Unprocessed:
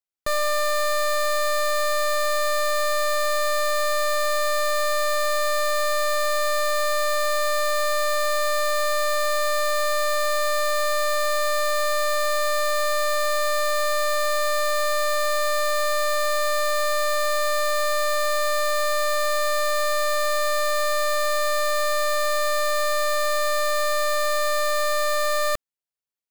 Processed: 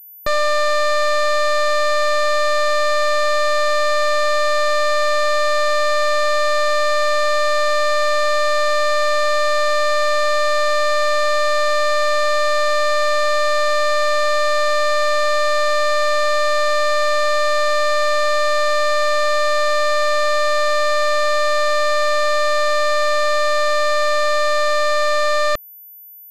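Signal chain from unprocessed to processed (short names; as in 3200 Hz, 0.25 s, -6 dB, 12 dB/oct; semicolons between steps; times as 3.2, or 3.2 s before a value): pulse-width modulation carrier 14000 Hz; gain +6 dB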